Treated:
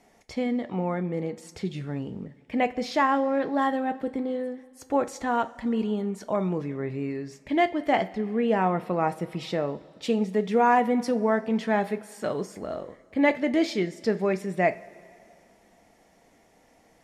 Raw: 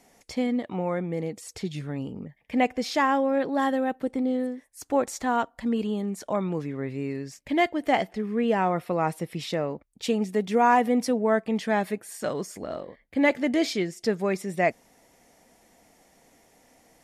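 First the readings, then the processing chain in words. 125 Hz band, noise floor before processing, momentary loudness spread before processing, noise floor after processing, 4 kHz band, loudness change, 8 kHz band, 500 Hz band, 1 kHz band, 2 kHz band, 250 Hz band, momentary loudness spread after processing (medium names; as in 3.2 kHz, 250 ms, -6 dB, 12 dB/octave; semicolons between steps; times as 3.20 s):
+0.5 dB, -62 dBFS, 11 LU, -60 dBFS, -2.5 dB, 0.0 dB, -6.0 dB, 0.0 dB, 0.0 dB, -1.0 dB, -0.5 dB, 11 LU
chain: treble shelf 5.7 kHz -10.5 dB; two-slope reverb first 0.29 s, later 2.5 s, from -18 dB, DRR 10 dB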